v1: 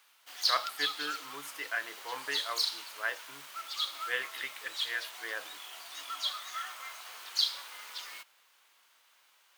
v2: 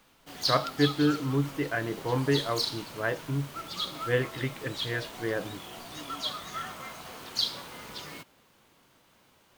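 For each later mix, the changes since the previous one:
speech: add running mean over 5 samples; master: remove HPF 1200 Hz 12 dB/oct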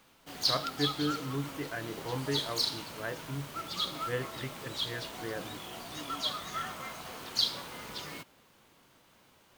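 speech -8.0 dB

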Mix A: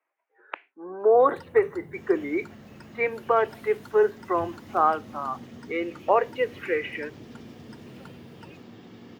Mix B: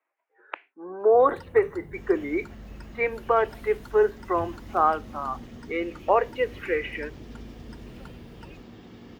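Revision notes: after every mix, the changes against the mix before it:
master: remove HPF 100 Hz 24 dB/oct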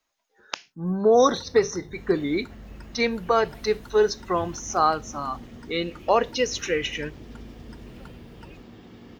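speech: remove elliptic band-pass 330–2300 Hz, stop band 40 dB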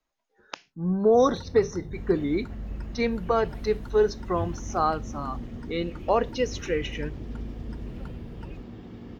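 speech -4.0 dB; master: add tilt -2 dB/oct

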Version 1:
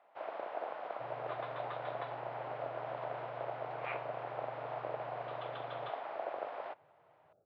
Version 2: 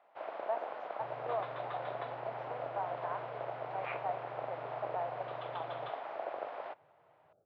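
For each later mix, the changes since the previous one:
speech: unmuted; reverb: on, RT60 2.0 s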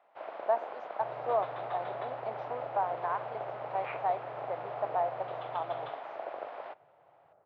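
speech +7.5 dB; second sound: remove running mean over 45 samples

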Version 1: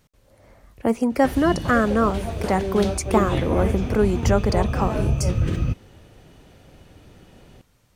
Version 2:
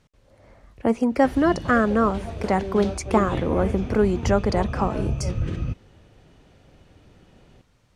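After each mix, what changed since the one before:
background -4.5 dB; master: add air absorption 54 m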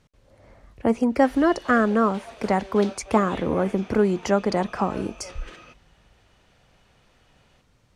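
background: add HPF 790 Hz 12 dB/oct

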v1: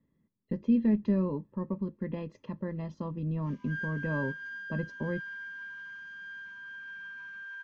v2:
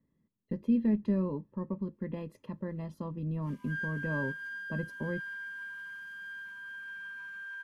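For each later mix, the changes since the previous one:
speech -3.0 dB; master: remove elliptic low-pass 6400 Hz, stop band 50 dB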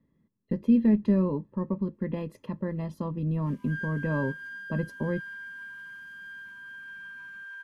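speech +6.0 dB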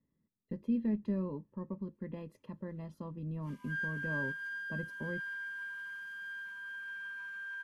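speech -11.0 dB; master: add brick-wall FIR low-pass 14000 Hz

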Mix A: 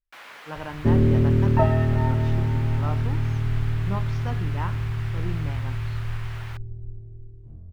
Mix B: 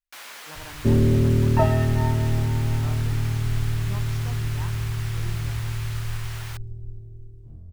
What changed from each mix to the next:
speech -9.0 dB; master: add tone controls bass 0 dB, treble +15 dB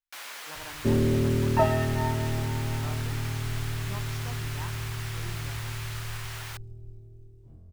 master: add low shelf 200 Hz -9.5 dB

